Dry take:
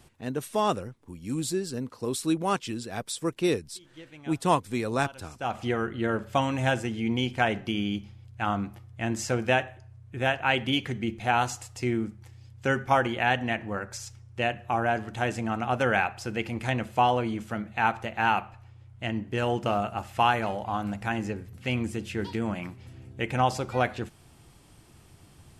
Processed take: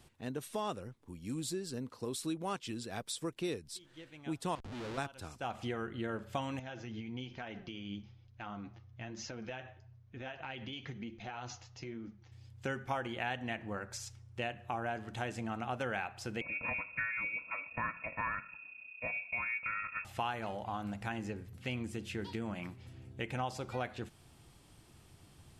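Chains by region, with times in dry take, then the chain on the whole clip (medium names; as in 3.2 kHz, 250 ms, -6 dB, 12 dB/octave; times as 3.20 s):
4.55–4.98 s: compression 4:1, threshold -30 dBFS + Schmitt trigger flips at -42 dBFS + distance through air 78 m
6.59–12.32 s: steep low-pass 6.6 kHz 96 dB/octave + compression, threshold -30 dBFS + flange 1.1 Hz, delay 3.1 ms, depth 7.2 ms, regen +47%
16.41–20.05 s: high-order bell 630 Hz -10 dB 1.2 oct + comb 2.5 ms, depth 98% + frequency inversion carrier 2.6 kHz
whole clip: compression 2.5:1, threshold -31 dBFS; peaking EQ 3.7 kHz +2.5 dB; trim -5.5 dB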